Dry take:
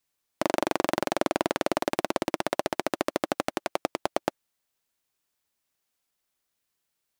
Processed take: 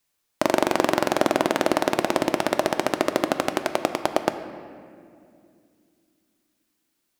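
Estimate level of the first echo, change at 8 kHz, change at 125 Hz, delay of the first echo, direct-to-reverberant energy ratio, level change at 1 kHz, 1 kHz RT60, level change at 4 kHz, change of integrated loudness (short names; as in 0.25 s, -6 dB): none, +5.0 dB, +6.0 dB, none, 8.0 dB, +5.5 dB, 2.1 s, +5.5 dB, +5.5 dB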